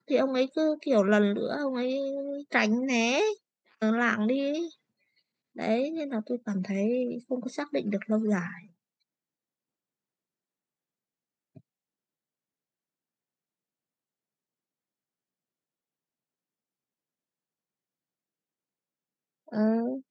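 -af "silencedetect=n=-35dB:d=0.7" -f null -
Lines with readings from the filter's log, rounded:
silence_start: 4.67
silence_end: 5.58 | silence_duration: 0.91
silence_start: 8.55
silence_end: 19.53 | silence_duration: 10.98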